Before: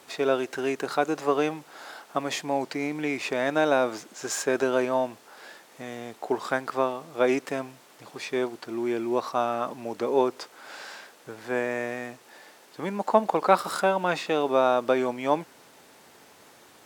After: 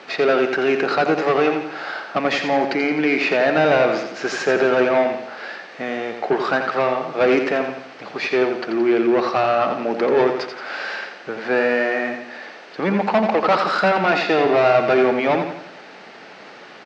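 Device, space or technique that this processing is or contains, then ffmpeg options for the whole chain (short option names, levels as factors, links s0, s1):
overdrive pedal into a guitar cabinet: -filter_complex "[0:a]asettb=1/sr,asplit=3[s0][s1][s2];[s0]atrim=end=14.064[s3];[s1]atrim=start=14.06:end=15.04,asetpts=PTS-STARTPTS,afade=t=in:d=0.004:c=qsin,afade=t=out:st=0.976:d=0.004:c=qsin,aecho=1:1:2.9:0.41,atrim=end_sample=43218[s4];[s2]atrim=start=15.036[s5];[s3][s4]acrossfade=d=0.004:c1=hsin:c2=qsin[s6];[s6][s5]acrossfade=d=0.004:c1=qsin:c2=hsin,lowshelf=f=390:g=3.5,asplit=2[s7][s8];[s8]highpass=f=720:p=1,volume=17.8,asoftclip=type=tanh:threshold=0.631[s9];[s7][s9]amix=inputs=2:normalize=0,lowpass=f=4200:p=1,volume=0.501,highpass=110,equalizer=f=190:t=q:w=4:g=7,equalizer=f=990:t=q:w=4:g=-7,equalizer=f=3500:t=q:w=4:g=-6,lowpass=f=4600:w=0.5412,lowpass=f=4600:w=1.3066,aecho=1:1:86|172|258|344|430:0.447|0.205|0.0945|0.0435|0.02,volume=0.708"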